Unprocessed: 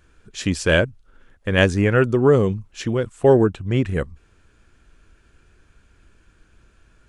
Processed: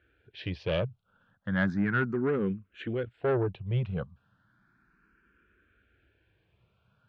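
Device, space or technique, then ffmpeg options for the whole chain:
barber-pole phaser into a guitar amplifier: -filter_complex "[0:a]asplit=2[a][b];[b]afreqshift=0.34[c];[a][c]amix=inputs=2:normalize=1,asoftclip=type=tanh:threshold=-14.5dB,highpass=82,equalizer=f=120:t=q:w=4:g=5,equalizer=f=190:t=q:w=4:g=6,equalizer=f=1.5k:t=q:w=4:g=7,lowpass=f=3.7k:w=0.5412,lowpass=f=3.7k:w=1.3066,volume=-8dB"

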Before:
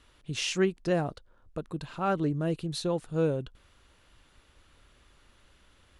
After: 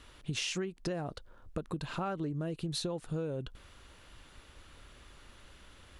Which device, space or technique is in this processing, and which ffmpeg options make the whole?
serial compression, leveller first: -af "acompressor=threshold=-32dB:ratio=2.5,acompressor=threshold=-38dB:ratio=6,volume=5.5dB"

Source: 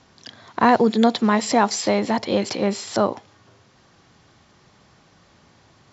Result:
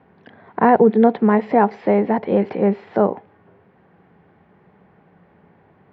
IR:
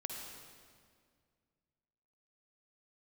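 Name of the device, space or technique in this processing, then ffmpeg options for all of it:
bass cabinet: -af "highpass=65,equalizer=f=120:t=q:w=4:g=-5,equalizer=f=180:t=q:w=4:g=9,equalizer=f=430:t=q:w=4:g=8,equalizer=f=790:t=q:w=4:g=4,equalizer=f=1.2k:t=q:w=4:g=-5,lowpass=f=2.1k:w=0.5412,lowpass=f=2.1k:w=1.3066"

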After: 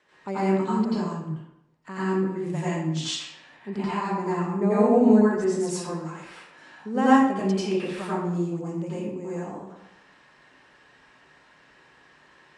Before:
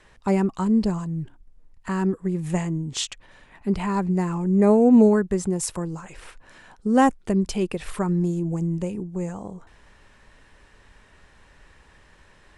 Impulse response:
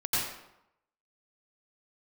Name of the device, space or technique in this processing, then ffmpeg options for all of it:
supermarket ceiling speaker: -filter_complex "[0:a]highpass=210,lowpass=6.3k[a];[1:a]atrim=start_sample=2205[b];[a][b]afir=irnorm=-1:irlink=0,volume=-8dB"

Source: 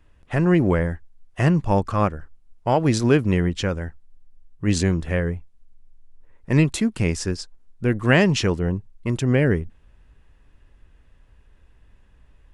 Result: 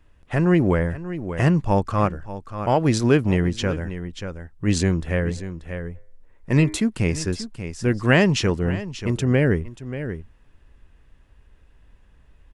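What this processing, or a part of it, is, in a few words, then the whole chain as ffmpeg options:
ducked delay: -filter_complex "[0:a]asplit=3[a][b][c];[a]afade=t=out:st=5.36:d=0.02[d];[b]bandreject=f=102.9:t=h:w=4,bandreject=f=205.8:t=h:w=4,bandreject=f=308.7:t=h:w=4,bandreject=f=411.6:t=h:w=4,bandreject=f=514.5:t=h:w=4,bandreject=f=617.4:t=h:w=4,bandreject=f=720.3:t=h:w=4,bandreject=f=823.2:t=h:w=4,bandreject=f=926.1:t=h:w=4,bandreject=f=1.029k:t=h:w=4,bandreject=f=1.1319k:t=h:w=4,bandreject=f=1.2348k:t=h:w=4,bandreject=f=1.3377k:t=h:w=4,bandreject=f=1.4406k:t=h:w=4,bandreject=f=1.5435k:t=h:w=4,bandreject=f=1.6464k:t=h:w=4,bandreject=f=1.7493k:t=h:w=4,bandreject=f=1.8522k:t=h:w=4,bandreject=f=1.9551k:t=h:w=4,bandreject=f=2.058k:t=h:w=4,bandreject=f=2.1609k:t=h:w=4,bandreject=f=2.2638k:t=h:w=4,bandreject=f=2.3667k:t=h:w=4,afade=t=in:st=5.36:d=0.02,afade=t=out:st=6.77:d=0.02[e];[c]afade=t=in:st=6.77:d=0.02[f];[d][e][f]amix=inputs=3:normalize=0,asplit=3[g][h][i];[h]adelay=585,volume=-7.5dB[j];[i]apad=whole_len=578593[k];[j][k]sidechaincompress=threshold=-25dB:ratio=8:attack=34:release=865[l];[g][l]amix=inputs=2:normalize=0"

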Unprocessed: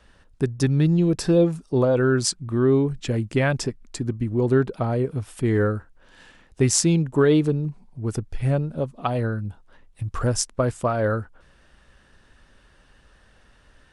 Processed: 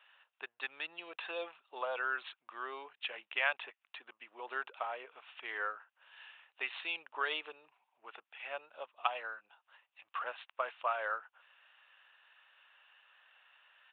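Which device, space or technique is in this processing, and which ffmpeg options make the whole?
musical greeting card: -af "aresample=8000,aresample=44100,highpass=f=800:w=0.5412,highpass=f=800:w=1.3066,equalizer=f=2.7k:t=o:w=0.34:g=8.5,volume=-5.5dB"

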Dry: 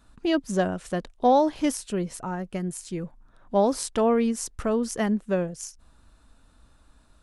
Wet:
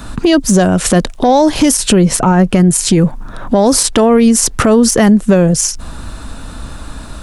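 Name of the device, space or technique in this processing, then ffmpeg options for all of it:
mastering chain: -filter_complex "[0:a]asettb=1/sr,asplit=3[a][b][c];[a]atrim=end=1.964[d];[b]atrim=start=1.96:end=2.76,asetpts=PTS-STARTPTS,afade=t=in:d=0.004:c=qsin,afade=t=out:st=0.796:d=0.004:c=qsin,highshelf=f=6.1k:g=-5.5[e];[c]atrim=start=2.756[f];[d][e]acrossfade=d=0.004:c1=hsin:c2=qsin[g];[g][f]acrossfade=d=0.004:c1=qsin:c2=hsin,equalizer=f=160:t=o:w=1.4:g=3,acrossover=split=88|5000[h][i][j];[h]acompressor=threshold=-51dB:ratio=4[k];[i]acompressor=threshold=-32dB:ratio=4[l];[j]acompressor=threshold=-38dB:ratio=4[m];[k][l][m]amix=inputs=3:normalize=0,acompressor=threshold=-34dB:ratio=2.5,asoftclip=type=tanh:threshold=-23dB,alimiter=level_in=31dB:limit=-1dB:release=50:level=0:latency=1,volume=-1dB"

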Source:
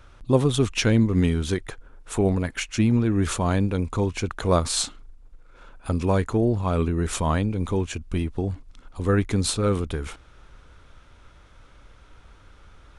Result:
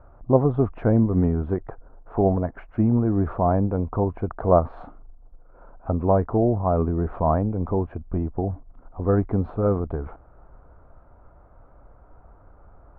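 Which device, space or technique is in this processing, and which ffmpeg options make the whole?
under water: -af "lowpass=f=1.2k:w=0.5412,lowpass=f=1.2k:w=1.3066,equalizer=f=690:t=o:w=0.53:g=9.5"

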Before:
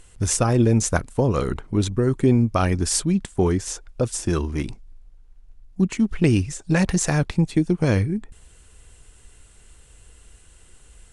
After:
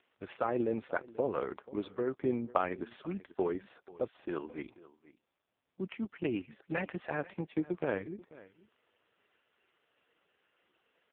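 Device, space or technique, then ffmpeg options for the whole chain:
satellite phone: -af "highpass=390,lowpass=3k,aecho=1:1:487:0.1,volume=-7dB" -ar 8000 -c:a libopencore_amrnb -b:a 4750

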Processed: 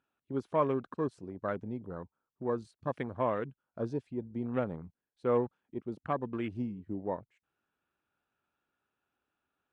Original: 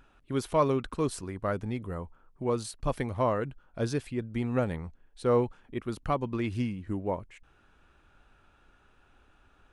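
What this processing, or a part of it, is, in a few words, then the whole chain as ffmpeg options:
over-cleaned archive recording: -af "highpass=140,lowpass=6.8k,afwtdn=0.0112,volume=-3.5dB"

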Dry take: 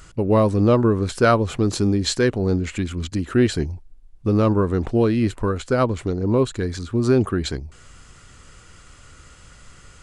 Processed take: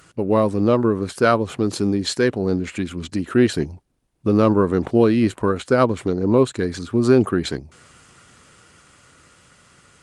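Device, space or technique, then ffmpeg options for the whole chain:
video call: -af "highpass=140,dynaudnorm=f=390:g=11:m=6.5dB" -ar 48000 -c:a libopus -b:a 32k

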